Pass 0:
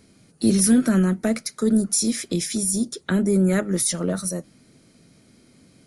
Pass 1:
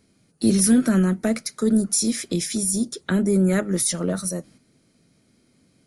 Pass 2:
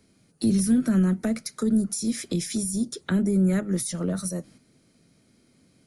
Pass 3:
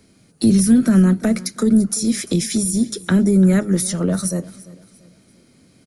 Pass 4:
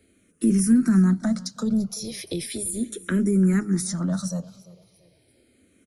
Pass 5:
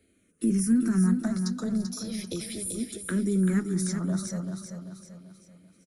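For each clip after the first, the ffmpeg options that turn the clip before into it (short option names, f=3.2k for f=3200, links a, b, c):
-af "agate=range=-7dB:threshold=-48dB:ratio=16:detection=peak"
-filter_complex "[0:a]acrossover=split=230[a][b];[b]acompressor=threshold=-30dB:ratio=4[c];[a][c]amix=inputs=2:normalize=0"
-af "aecho=1:1:343|686|1029:0.106|0.0392|0.0145,volume=8dB"
-filter_complex "[0:a]asplit=2[a][b];[b]afreqshift=-0.36[c];[a][c]amix=inputs=2:normalize=1,volume=-4.5dB"
-af "aecho=1:1:388|776|1164|1552|1940:0.447|0.192|0.0826|0.0355|0.0153,volume=-5dB"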